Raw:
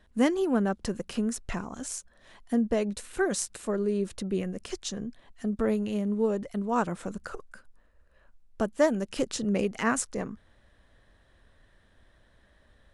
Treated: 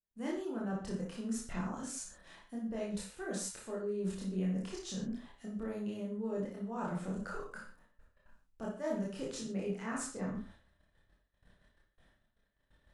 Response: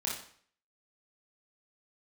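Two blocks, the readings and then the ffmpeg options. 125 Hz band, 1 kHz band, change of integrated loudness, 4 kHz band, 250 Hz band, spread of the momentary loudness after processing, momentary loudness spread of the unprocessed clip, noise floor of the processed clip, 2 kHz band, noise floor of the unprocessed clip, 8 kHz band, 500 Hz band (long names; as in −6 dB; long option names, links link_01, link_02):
−5.0 dB, −11.0 dB, −9.5 dB, −9.5 dB, −9.0 dB, 8 LU, 11 LU, −78 dBFS, −11.5 dB, −63 dBFS, −8.5 dB, −11.0 dB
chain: -filter_complex "[0:a]agate=range=-31dB:threshold=-56dB:ratio=16:detection=peak,areverse,acompressor=threshold=-41dB:ratio=6,areverse[link_01];[1:a]atrim=start_sample=2205,afade=type=out:start_time=0.22:duration=0.01,atrim=end_sample=10143[link_02];[link_01][link_02]afir=irnorm=-1:irlink=0,adynamicequalizer=threshold=0.00141:dfrequency=1900:dqfactor=0.7:tfrequency=1900:tqfactor=0.7:attack=5:release=100:ratio=0.375:range=2:mode=cutabove:tftype=highshelf,volume=1dB"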